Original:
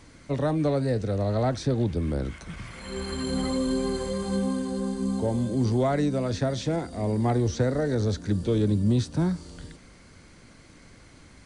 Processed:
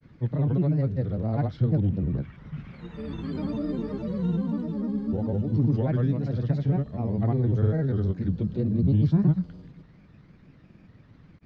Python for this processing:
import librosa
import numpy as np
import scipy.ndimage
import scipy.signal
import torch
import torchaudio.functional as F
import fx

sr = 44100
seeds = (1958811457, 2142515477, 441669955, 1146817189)

y = fx.peak_eq(x, sr, hz=150.0, db=13.0, octaves=1.1)
y = fx.granulator(y, sr, seeds[0], grain_ms=100.0, per_s=20.0, spray_ms=100.0, spread_st=3)
y = fx.air_absorb(y, sr, metres=260.0)
y = y * 10.0 ** (-5.5 / 20.0)